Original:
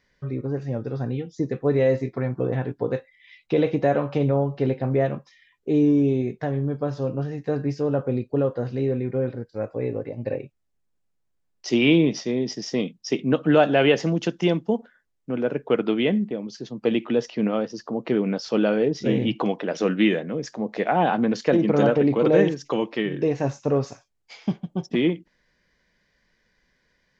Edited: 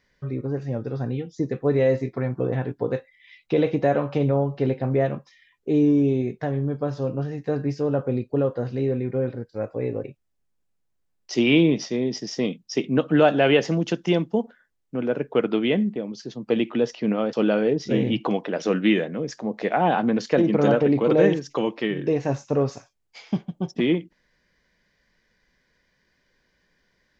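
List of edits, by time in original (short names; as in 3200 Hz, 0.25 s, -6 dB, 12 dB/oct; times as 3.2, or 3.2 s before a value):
10.04–10.39 cut
17.68–18.48 cut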